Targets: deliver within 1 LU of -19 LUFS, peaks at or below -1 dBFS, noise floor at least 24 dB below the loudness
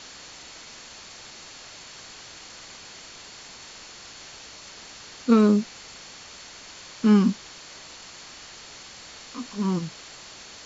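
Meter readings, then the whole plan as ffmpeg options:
steady tone 4400 Hz; tone level -51 dBFS; noise floor -45 dBFS; noise floor target -47 dBFS; loudness -23.0 LUFS; peak -7.5 dBFS; loudness target -19.0 LUFS
-> -af "bandreject=f=4.4k:w=30"
-af "afftdn=nr=6:nf=-45"
-af "volume=4dB"

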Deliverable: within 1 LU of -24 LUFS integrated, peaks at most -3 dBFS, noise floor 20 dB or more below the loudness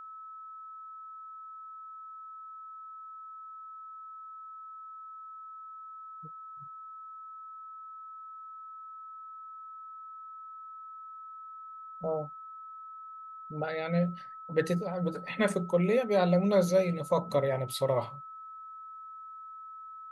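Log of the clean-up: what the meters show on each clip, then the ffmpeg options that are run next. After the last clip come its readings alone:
steady tone 1300 Hz; tone level -43 dBFS; loudness -30.0 LUFS; peak -13.0 dBFS; loudness target -24.0 LUFS
-> -af "bandreject=f=1.3k:w=30"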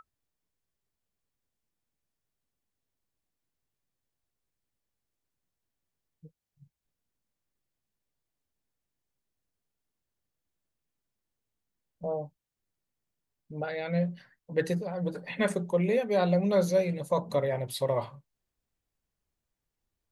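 steady tone none; loudness -29.5 LUFS; peak -13.5 dBFS; loudness target -24.0 LUFS
-> -af "volume=5.5dB"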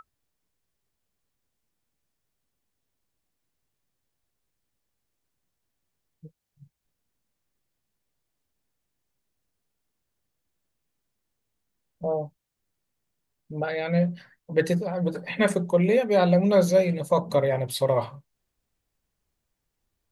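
loudness -24.0 LUFS; peak -8.0 dBFS; noise floor -81 dBFS

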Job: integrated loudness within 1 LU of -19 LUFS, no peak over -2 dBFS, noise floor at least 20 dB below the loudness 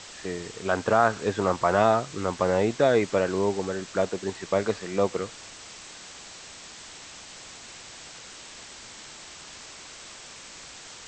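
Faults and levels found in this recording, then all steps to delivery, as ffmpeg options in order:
noise floor -45 dBFS; noise floor target -46 dBFS; loudness -25.5 LUFS; peak -6.5 dBFS; loudness target -19.0 LUFS
-> -af "afftdn=nr=6:nf=-45"
-af "volume=6.5dB,alimiter=limit=-2dB:level=0:latency=1"

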